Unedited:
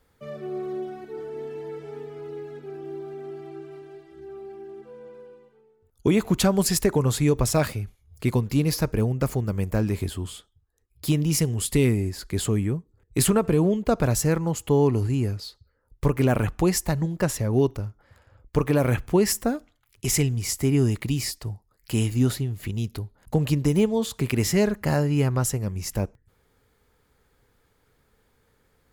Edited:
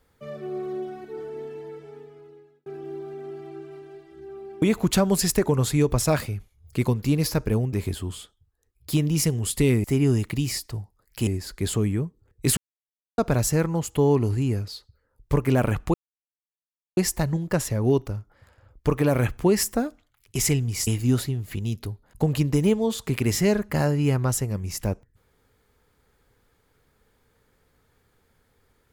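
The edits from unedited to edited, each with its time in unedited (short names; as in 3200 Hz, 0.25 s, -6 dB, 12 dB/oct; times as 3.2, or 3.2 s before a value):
1.25–2.66 fade out
4.62–6.09 cut
9.2–9.88 cut
13.29–13.9 mute
16.66 insert silence 1.03 s
20.56–21.99 move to 11.99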